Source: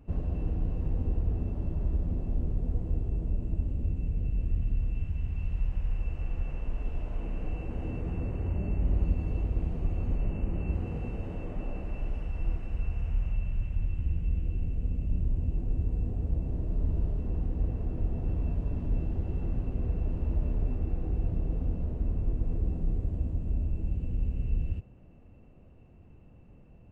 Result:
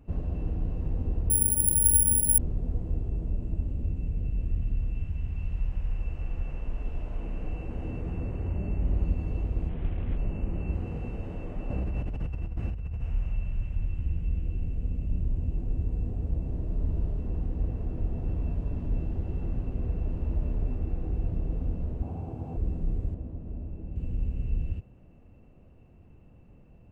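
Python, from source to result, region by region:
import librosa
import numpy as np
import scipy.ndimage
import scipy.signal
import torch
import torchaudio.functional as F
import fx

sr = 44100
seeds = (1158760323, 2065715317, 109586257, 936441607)

y = fx.chain(x, sr, fx.high_shelf(hz=2200.0, db=-5.5),
    fx.resample_bad(factor=4, down='filtered', up='zero_stuff'), at=(1.3, 2.38))
y = fx.chain(y, sr, fx.cvsd(bps=16000),
    fx.air_absorb(metres=180.0), at=(9.69, 10.17))
y = fx.chain(y, sr, fx.highpass(hz=46.0, slope=24),
    fx.low_shelf(hz=190.0, db=10.0),
    fx.over_compress(threshold_db=-31.0, ratio=-1.0), at=(11.7, 13.01))
y = fx.chain(y, sr, fx.highpass(hz=76.0, slope=24),
    fx.peak_eq(hz=790.0, db=14.5, octaves=0.4),
    fx.notch(hz=1900.0, q=7.4), at=(22.02, 22.57))
y = fx.chain(y, sr, fx.lowpass(hz=1200.0, slope=6),
    fx.low_shelf(hz=130.0, db=-9.5), at=(23.14, 23.96))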